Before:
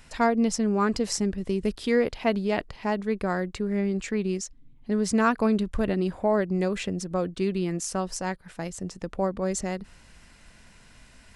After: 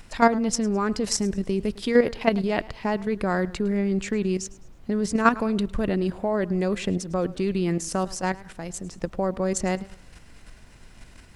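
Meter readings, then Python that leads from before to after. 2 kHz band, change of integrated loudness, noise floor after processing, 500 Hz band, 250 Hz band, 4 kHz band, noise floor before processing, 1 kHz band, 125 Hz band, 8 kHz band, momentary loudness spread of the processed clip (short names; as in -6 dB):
+2.5 dB, +2.0 dB, -49 dBFS, +1.5 dB, +1.5 dB, +2.5 dB, -54 dBFS, +2.5 dB, +2.5 dB, +2.0 dB, 9 LU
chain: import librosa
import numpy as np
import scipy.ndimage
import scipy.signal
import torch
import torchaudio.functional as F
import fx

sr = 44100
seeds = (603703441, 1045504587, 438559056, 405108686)

y = fx.level_steps(x, sr, step_db=10)
y = fx.dmg_noise_colour(y, sr, seeds[0], colour='brown', level_db=-55.0)
y = fx.echo_warbled(y, sr, ms=106, feedback_pct=35, rate_hz=2.8, cents=77, wet_db=-20.0)
y = y * 10.0 ** (6.5 / 20.0)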